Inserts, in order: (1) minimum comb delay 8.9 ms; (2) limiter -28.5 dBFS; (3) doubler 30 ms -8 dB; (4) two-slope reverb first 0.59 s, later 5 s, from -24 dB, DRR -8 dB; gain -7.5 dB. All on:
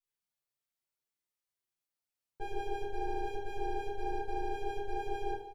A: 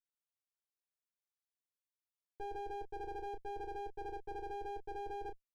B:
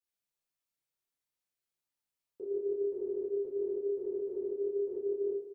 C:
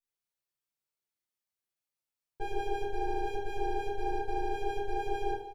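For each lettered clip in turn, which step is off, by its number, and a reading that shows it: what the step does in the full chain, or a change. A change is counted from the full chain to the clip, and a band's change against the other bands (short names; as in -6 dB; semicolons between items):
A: 4, crest factor change -3.5 dB; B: 1, crest factor change -2.5 dB; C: 2, mean gain reduction 3.0 dB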